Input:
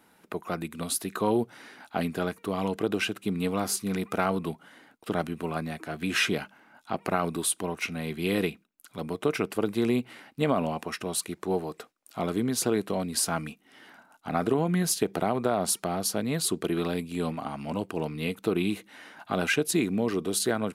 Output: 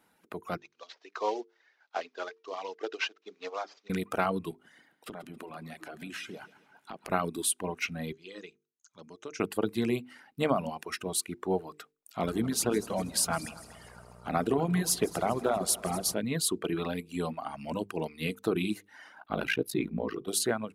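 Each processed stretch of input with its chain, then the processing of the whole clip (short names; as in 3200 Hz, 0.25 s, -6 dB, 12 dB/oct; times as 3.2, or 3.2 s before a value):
0.57–3.9 CVSD 32 kbps + HPF 420 Hz 24 dB/oct + upward expander, over -49 dBFS
4.51–7.1 HPF 130 Hz + compressor 8:1, threshold -36 dBFS + feedback echo 0.136 s, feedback 57%, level -10 dB
8.12–9.4 ladder low-pass 6600 Hz, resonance 85% + low shelf 120 Hz -10.5 dB + notch 730 Hz, Q 9.9
12.22–16.13 buzz 60 Hz, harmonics 24, -46 dBFS + multi-head echo 80 ms, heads second and third, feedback 54%, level -11.5 dB
19.19–20.28 bell 7700 Hz -13 dB 0.96 oct + ring modulator 28 Hz
whole clip: notches 50/100/150/200/250/300/350/400/450 Hz; reverb removal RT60 1.5 s; AGC gain up to 6 dB; gain -6.5 dB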